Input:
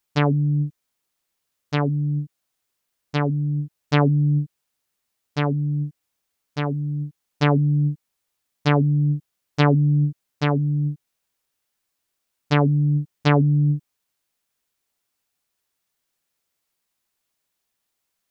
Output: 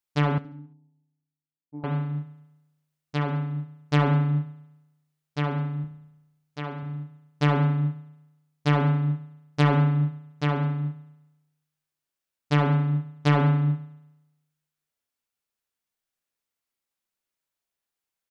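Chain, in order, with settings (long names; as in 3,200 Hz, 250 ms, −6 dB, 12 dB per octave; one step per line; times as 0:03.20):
0:05.84–0:06.83: low-shelf EQ 130 Hz −8.5 dB
spring reverb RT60 1 s, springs 33 ms, chirp 75 ms, DRR 3 dB
soft clipping −6.5 dBFS, distortion −22 dB
0:00.38–0:01.84: formant resonators in series u
repeating echo 70 ms, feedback 51%, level −16 dB
expander for the loud parts 1.5 to 1, over −31 dBFS
level −2 dB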